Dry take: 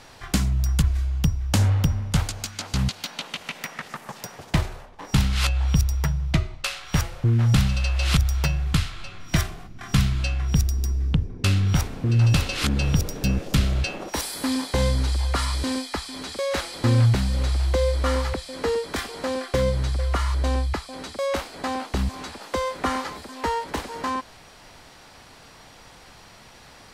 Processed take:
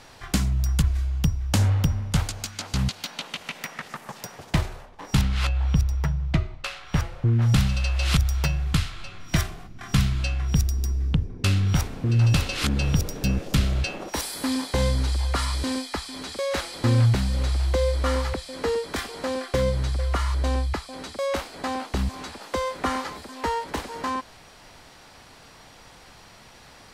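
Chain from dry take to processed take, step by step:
0:05.21–0:07.42: high-shelf EQ 4,400 Hz −11.5 dB
level −1 dB

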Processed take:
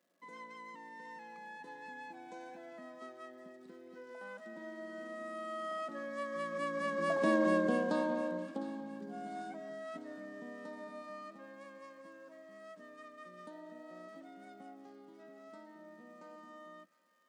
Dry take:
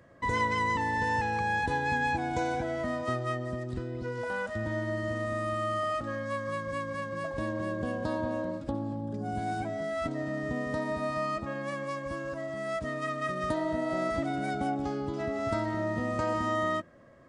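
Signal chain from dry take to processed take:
source passing by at 0:07.38, 7 m/s, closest 2.4 metres
surface crackle 510 per second −73 dBFS
elliptic high-pass filter 180 Hz, stop band 40 dB
on a send: delay with a high-pass on its return 705 ms, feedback 44%, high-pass 1,600 Hz, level −13.5 dB
on the sum: level +5.5 dB

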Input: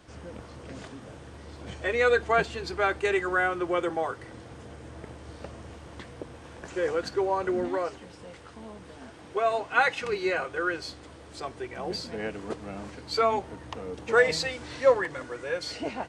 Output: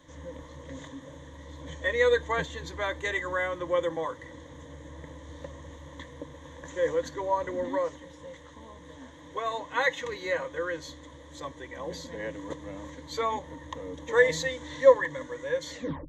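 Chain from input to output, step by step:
turntable brake at the end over 0.31 s
EQ curve with evenly spaced ripples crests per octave 1.1, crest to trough 16 dB
level −4.5 dB

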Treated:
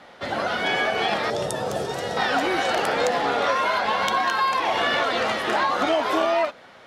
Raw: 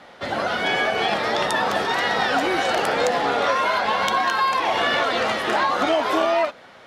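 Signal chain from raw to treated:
0:01.30–0:02.17: octave-band graphic EQ 125/250/500/1,000/2,000/4,000/8,000 Hz +10/−6/+5/−9/−10/−6/+5 dB
level −1.5 dB

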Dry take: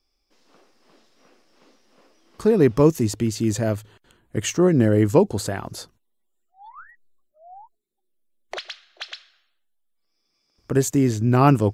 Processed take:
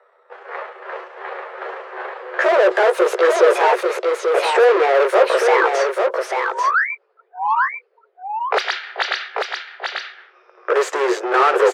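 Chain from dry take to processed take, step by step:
pitch glide at a constant tempo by +8.5 semitones ending unshifted
mid-hump overdrive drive 36 dB, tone 1,500 Hz, clips at −4.5 dBFS
high-shelf EQ 7,600 Hz −11 dB
in parallel at +2 dB: downward compressor, threshold −23 dBFS, peak gain reduction 13 dB
on the sum: low-pass that shuts in the quiet parts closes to 1,600 Hz, open at −9 dBFS
Chebyshev high-pass with heavy ripple 360 Hz, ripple 6 dB
on a send: single-tap delay 840 ms −4.5 dB

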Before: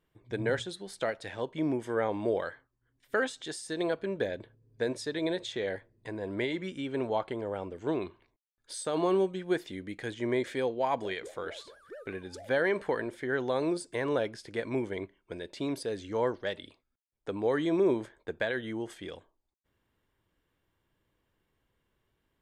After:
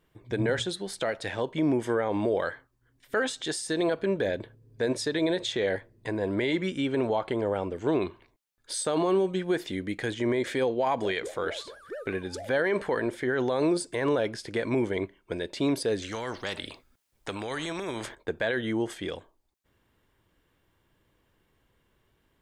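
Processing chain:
brickwall limiter −25 dBFS, peak gain reduction 7.5 dB
0:16.02–0:18.15: every bin compressed towards the loudest bin 2 to 1
level +7.5 dB

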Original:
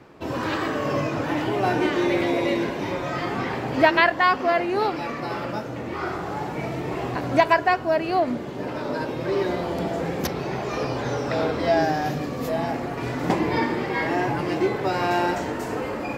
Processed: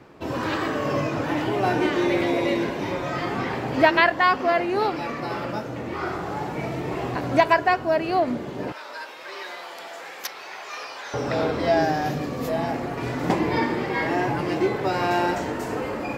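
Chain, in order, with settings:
0:08.72–0:11.14: high-pass filter 1,200 Hz 12 dB per octave

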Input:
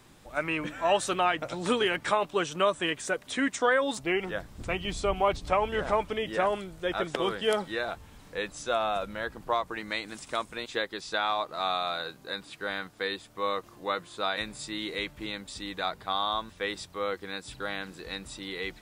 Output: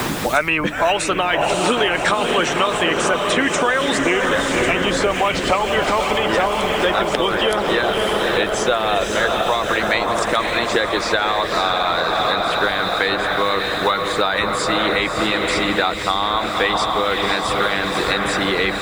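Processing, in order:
high-shelf EQ 8,400 Hz −5.5 dB
feedback delay with all-pass diffusion 555 ms, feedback 60%, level −4.5 dB
in parallel at +1 dB: brickwall limiter −22.5 dBFS, peak gain reduction 11.5 dB
on the sum: bit-depth reduction 10 bits, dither triangular
harmonic and percussive parts rebalanced percussive +9 dB
multiband upward and downward compressor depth 100%

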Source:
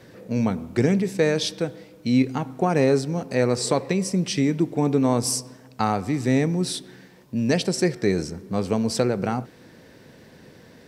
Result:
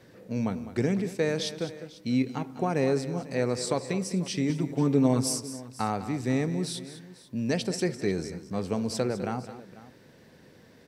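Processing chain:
0:04.49–0:05.33: comb filter 7.5 ms, depth 83%
multi-tap delay 204/494 ms −13/−18.5 dB
level −6.5 dB

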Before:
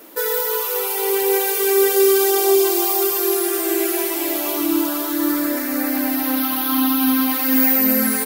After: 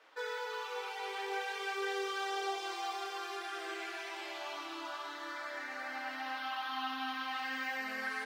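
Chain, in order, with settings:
high-pass filter 1,100 Hz 12 dB per octave
high-shelf EQ 5,400 Hz −10.5 dB
flanger 0.47 Hz, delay 9.5 ms, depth 4.8 ms, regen −63%
high-frequency loss of the air 140 metres
on a send: convolution reverb RT60 0.50 s, pre-delay 3 ms, DRR 2 dB
on the sum: level −4 dB

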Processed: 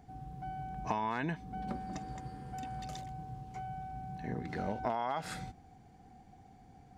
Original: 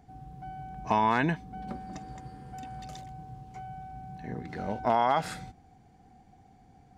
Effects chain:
downward compressor 6 to 1, threshold −31 dBFS, peak gain reduction 10.5 dB

